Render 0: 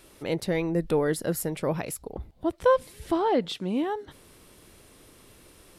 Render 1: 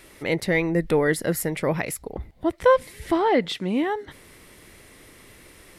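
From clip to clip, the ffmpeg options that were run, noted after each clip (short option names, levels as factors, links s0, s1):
-af "equalizer=f=2000:t=o:w=0.41:g=10.5,volume=1.5"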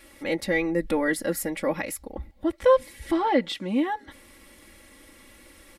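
-af "aecho=1:1:3.6:0.9,volume=0.562"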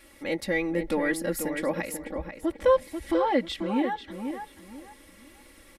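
-filter_complex "[0:a]asplit=2[s0][s1];[s1]adelay=489,lowpass=f=2700:p=1,volume=0.447,asplit=2[s2][s3];[s3]adelay=489,lowpass=f=2700:p=1,volume=0.28,asplit=2[s4][s5];[s5]adelay=489,lowpass=f=2700:p=1,volume=0.28[s6];[s0][s2][s4][s6]amix=inputs=4:normalize=0,volume=0.75"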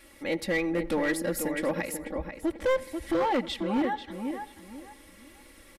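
-filter_complex "[0:a]asoftclip=type=hard:threshold=0.0841,asplit=2[s0][s1];[s1]adelay=88,lowpass=f=2500:p=1,volume=0.1,asplit=2[s2][s3];[s3]adelay=88,lowpass=f=2500:p=1,volume=0.53,asplit=2[s4][s5];[s5]adelay=88,lowpass=f=2500:p=1,volume=0.53,asplit=2[s6][s7];[s7]adelay=88,lowpass=f=2500:p=1,volume=0.53[s8];[s0][s2][s4][s6][s8]amix=inputs=5:normalize=0"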